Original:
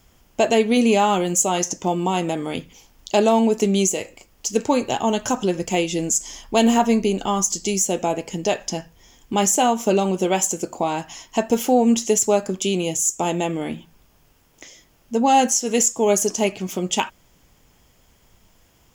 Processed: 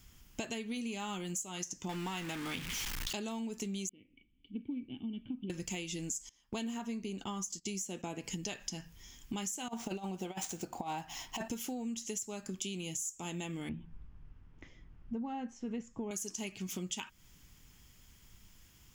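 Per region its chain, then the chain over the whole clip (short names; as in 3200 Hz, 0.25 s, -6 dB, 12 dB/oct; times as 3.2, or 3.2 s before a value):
1.89–3.13 zero-crossing step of -26 dBFS + bell 1600 Hz +8 dB 2.5 oct
3.89–5.5 dynamic EQ 2600 Hz, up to -4 dB, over -40 dBFS, Q 1.2 + vocal tract filter i
6.29–8.24 HPF 240 Hz 6 dB/oct + tilt -1.5 dB/oct + gate -35 dBFS, range -19 dB
9.68–11.48 median filter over 5 samples + bell 760 Hz +13.5 dB 0.56 oct + negative-ratio compressor -15 dBFS, ratio -0.5
13.69–16.11 LPF 1400 Hz + low shelf 130 Hz +11 dB
whole clip: bell 600 Hz -14.5 dB 1.6 oct; compressor 12:1, threshold -34 dBFS; gain -2 dB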